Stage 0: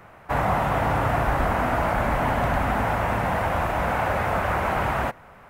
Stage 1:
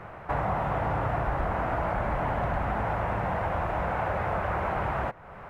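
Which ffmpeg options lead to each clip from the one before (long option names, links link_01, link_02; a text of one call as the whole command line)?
ffmpeg -i in.wav -af "lowpass=frequency=1600:poles=1,equalizer=frequency=250:width_type=o:width=0.25:gain=-8.5,acompressor=threshold=-41dB:ratio=2,volume=6.5dB" out.wav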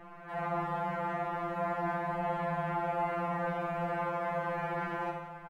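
ffmpeg -i in.wav -filter_complex "[0:a]asplit=2[link_01][link_02];[link_02]adelay=44,volume=-5dB[link_03];[link_01][link_03]amix=inputs=2:normalize=0,aecho=1:1:70|150.5|243.1|349.5|472:0.631|0.398|0.251|0.158|0.1,afftfilt=real='re*2.83*eq(mod(b,8),0)':imag='im*2.83*eq(mod(b,8),0)':win_size=2048:overlap=0.75,volume=-5.5dB" out.wav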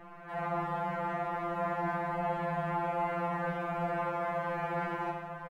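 ffmpeg -i in.wav -af "aecho=1:1:952:0.282" out.wav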